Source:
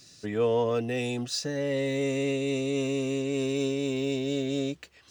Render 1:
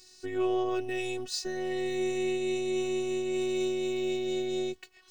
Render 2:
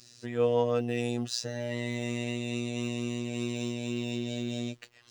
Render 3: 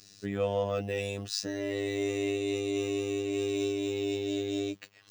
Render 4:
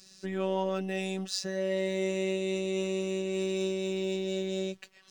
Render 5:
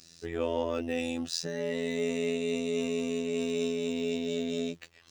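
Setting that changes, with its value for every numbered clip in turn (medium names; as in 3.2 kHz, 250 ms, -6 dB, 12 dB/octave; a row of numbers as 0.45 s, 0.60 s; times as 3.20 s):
robot voice, frequency: 370 Hz, 120 Hz, 100 Hz, 190 Hz, 84 Hz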